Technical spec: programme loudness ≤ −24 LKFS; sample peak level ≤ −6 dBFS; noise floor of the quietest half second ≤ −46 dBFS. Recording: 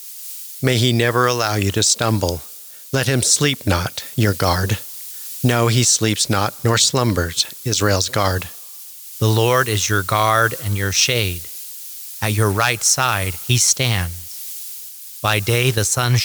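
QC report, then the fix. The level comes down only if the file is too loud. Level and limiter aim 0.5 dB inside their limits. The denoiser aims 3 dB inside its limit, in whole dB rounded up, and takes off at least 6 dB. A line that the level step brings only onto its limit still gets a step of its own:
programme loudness −17.5 LKFS: out of spec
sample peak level −2.5 dBFS: out of spec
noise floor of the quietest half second −38 dBFS: out of spec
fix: broadband denoise 6 dB, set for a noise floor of −38 dBFS
level −7 dB

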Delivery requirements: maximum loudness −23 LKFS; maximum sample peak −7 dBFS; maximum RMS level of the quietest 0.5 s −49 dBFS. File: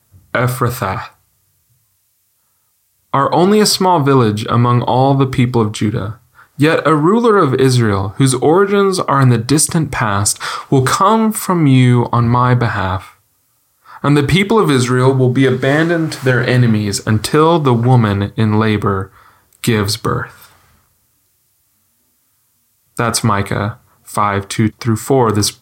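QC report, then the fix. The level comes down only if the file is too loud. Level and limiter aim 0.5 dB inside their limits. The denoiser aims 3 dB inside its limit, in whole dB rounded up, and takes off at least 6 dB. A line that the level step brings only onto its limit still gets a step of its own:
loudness −13.5 LKFS: out of spec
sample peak −2.0 dBFS: out of spec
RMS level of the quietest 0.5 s −61 dBFS: in spec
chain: level −10 dB

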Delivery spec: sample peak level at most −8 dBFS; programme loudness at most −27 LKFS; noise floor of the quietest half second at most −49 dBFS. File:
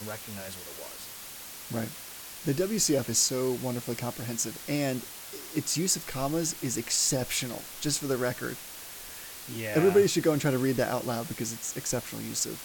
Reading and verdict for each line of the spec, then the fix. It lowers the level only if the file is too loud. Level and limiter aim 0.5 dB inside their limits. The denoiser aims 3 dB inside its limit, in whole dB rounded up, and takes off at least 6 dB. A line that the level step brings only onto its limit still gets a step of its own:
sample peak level −10.5 dBFS: in spec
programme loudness −29.0 LKFS: in spec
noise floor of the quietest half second −43 dBFS: out of spec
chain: broadband denoise 9 dB, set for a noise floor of −43 dBFS

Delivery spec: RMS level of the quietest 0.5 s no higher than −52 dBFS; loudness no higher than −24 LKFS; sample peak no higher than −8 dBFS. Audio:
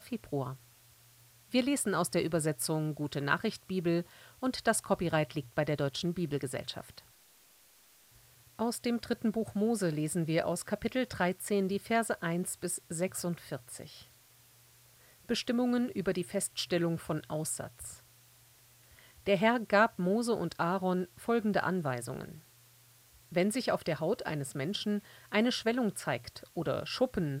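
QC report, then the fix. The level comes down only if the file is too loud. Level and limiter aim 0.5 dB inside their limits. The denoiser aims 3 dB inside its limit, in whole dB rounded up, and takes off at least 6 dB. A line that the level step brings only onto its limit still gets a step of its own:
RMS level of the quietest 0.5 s −62 dBFS: in spec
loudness −33.0 LKFS: in spec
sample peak −12.0 dBFS: in spec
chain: no processing needed

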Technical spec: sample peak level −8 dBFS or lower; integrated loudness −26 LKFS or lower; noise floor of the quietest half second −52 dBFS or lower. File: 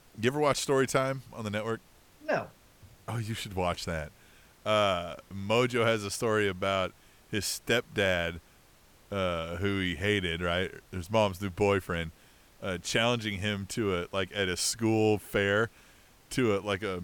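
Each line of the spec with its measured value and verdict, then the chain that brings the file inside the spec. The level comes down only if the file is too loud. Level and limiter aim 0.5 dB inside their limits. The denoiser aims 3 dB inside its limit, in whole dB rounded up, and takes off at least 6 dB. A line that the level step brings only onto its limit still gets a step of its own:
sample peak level −12.5 dBFS: in spec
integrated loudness −30.0 LKFS: in spec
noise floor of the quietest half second −59 dBFS: in spec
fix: no processing needed

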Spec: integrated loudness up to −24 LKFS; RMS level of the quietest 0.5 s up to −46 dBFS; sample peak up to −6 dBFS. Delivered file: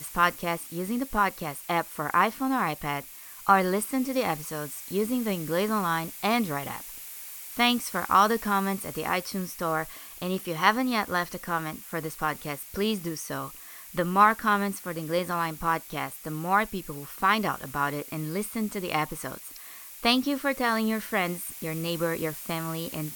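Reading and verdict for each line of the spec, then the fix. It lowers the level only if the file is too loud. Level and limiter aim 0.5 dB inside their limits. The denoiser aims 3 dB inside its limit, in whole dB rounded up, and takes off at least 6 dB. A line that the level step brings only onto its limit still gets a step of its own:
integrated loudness −27.5 LKFS: in spec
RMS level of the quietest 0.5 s −44 dBFS: out of spec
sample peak −5.5 dBFS: out of spec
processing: broadband denoise 6 dB, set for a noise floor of −44 dBFS
brickwall limiter −6.5 dBFS

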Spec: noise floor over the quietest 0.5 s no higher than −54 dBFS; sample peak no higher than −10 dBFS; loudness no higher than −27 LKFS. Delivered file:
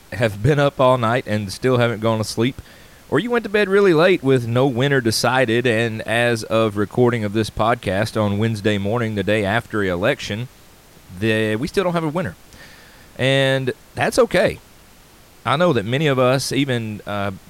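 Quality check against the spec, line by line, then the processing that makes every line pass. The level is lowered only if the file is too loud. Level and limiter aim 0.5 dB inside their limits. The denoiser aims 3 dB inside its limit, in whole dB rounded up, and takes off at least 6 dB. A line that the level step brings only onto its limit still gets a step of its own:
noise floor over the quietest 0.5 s −47 dBFS: out of spec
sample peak −4.5 dBFS: out of spec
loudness −19.0 LKFS: out of spec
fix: level −8.5 dB

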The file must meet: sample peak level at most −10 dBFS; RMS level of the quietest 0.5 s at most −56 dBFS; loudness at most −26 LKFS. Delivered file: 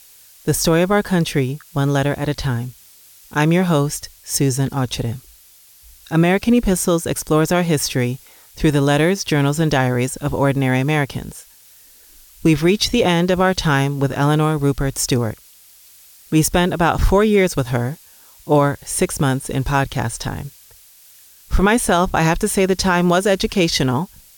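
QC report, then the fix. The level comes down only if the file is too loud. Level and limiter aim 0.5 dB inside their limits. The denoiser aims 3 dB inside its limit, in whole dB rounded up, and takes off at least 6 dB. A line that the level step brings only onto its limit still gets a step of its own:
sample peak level −5.0 dBFS: out of spec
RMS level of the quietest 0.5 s −48 dBFS: out of spec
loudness −18.0 LKFS: out of spec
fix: level −8.5 dB

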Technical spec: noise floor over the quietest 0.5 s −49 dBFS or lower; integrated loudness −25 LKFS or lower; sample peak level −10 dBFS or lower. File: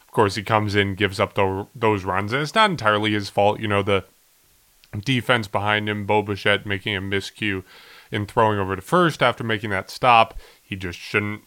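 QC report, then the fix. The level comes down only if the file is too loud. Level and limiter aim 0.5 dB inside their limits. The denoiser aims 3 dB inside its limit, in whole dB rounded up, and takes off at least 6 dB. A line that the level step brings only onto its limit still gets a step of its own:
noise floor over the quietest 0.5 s −58 dBFS: in spec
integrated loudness −21.0 LKFS: out of spec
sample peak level −2.0 dBFS: out of spec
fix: level −4.5 dB
brickwall limiter −10.5 dBFS

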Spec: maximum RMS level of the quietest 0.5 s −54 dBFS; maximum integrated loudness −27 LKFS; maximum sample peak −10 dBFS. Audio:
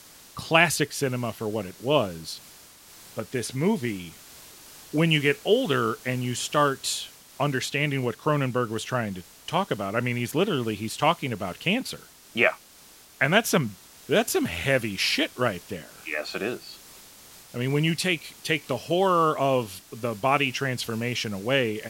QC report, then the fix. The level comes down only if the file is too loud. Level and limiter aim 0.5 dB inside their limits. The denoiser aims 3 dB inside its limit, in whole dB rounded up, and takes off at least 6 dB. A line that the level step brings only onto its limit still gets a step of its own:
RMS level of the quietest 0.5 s −51 dBFS: out of spec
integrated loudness −25.5 LKFS: out of spec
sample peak −4.0 dBFS: out of spec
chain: broadband denoise 6 dB, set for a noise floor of −51 dBFS
level −2 dB
brickwall limiter −10.5 dBFS

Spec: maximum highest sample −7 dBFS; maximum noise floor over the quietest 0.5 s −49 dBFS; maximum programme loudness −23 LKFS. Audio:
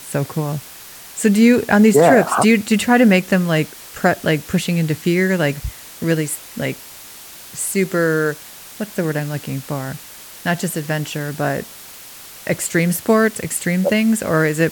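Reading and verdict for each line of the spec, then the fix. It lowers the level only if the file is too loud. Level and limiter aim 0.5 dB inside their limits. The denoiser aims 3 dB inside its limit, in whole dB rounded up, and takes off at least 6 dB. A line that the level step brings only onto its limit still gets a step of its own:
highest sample −2.0 dBFS: out of spec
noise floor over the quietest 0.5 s −38 dBFS: out of spec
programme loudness −17.5 LKFS: out of spec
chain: broadband denoise 8 dB, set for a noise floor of −38 dBFS
level −6 dB

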